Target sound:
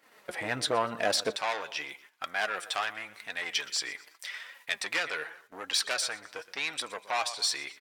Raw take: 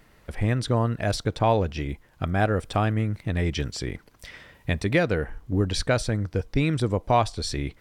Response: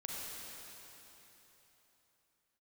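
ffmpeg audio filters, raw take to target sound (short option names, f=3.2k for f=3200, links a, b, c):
-af "aecho=1:1:121|242|363:0.106|0.0413|0.0161,asoftclip=type=tanh:threshold=-21.5dB,asetnsamples=n=441:p=0,asendcmd='1.36 highpass f 1200',highpass=450,agate=range=-12dB:threshold=-60dB:ratio=16:detection=peak,flanger=delay=3.5:depth=3.8:regen=49:speed=0.88:shape=triangular,volume=9dB"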